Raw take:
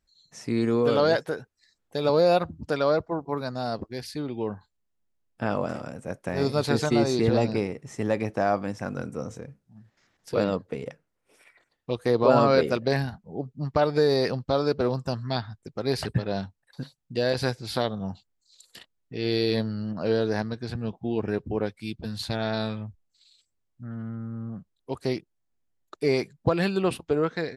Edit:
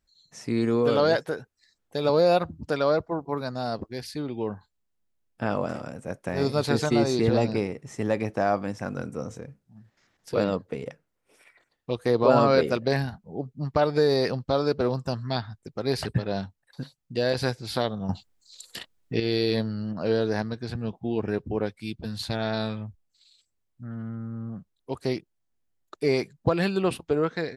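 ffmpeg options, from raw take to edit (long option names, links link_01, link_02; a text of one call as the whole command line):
ffmpeg -i in.wav -filter_complex "[0:a]asplit=3[link_01][link_02][link_03];[link_01]atrim=end=18.092[link_04];[link_02]atrim=start=18.088:end=19.202,asetpts=PTS-STARTPTS,volume=8.5dB[link_05];[link_03]atrim=start=19.198[link_06];[link_04][link_05]acrossfade=duration=0.004:curve1=hsin:curve2=hsin[link_07];[link_07][link_06]acrossfade=duration=0.004:curve1=hsin:curve2=hsin" out.wav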